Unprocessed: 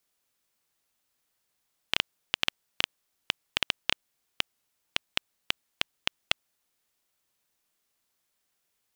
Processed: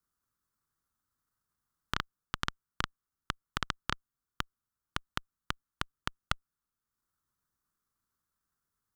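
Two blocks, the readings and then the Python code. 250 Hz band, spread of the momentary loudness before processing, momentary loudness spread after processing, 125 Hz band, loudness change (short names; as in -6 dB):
+2.5 dB, 5 LU, 5 LU, +7.5 dB, -7.5 dB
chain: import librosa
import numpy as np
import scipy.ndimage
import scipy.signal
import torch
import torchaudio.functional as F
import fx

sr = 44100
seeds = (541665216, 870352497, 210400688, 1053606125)

y = fx.high_shelf_res(x, sr, hz=1800.0, db=-12.0, q=3.0)
y = fx.transient(y, sr, attack_db=5, sustain_db=-5)
y = fx.tone_stack(y, sr, knobs='6-0-2')
y = y * 10.0 ** (17.0 / 20.0)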